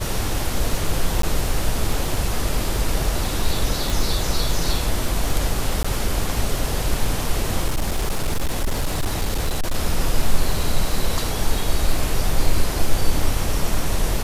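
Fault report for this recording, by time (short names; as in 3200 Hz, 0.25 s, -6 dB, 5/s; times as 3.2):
crackle 17/s -24 dBFS
1.22–1.23 gap 13 ms
3.9 pop
5.83–5.84 gap 15 ms
7.67–9.75 clipped -16.5 dBFS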